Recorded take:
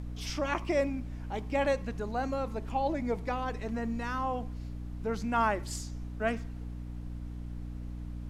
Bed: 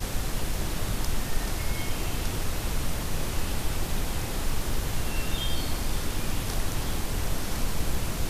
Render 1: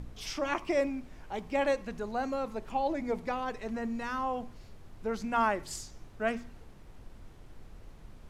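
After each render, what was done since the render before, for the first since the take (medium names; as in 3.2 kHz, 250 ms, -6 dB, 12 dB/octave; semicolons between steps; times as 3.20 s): de-hum 60 Hz, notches 5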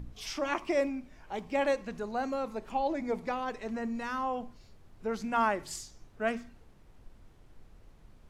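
noise print and reduce 6 dB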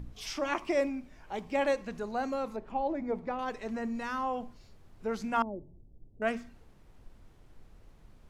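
2.56–3.39 s: low-pass 1.2 kHz 6 dB/octave; 5.42–6.22 s: Gaussian low-pass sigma 17 samples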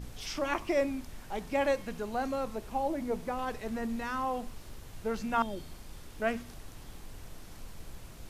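add bed -19 dB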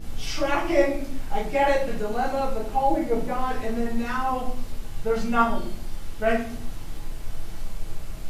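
simulated room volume 61 m³, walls mixed, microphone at 1.5 m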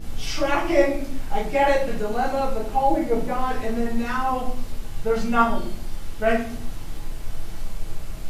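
trim +2 dB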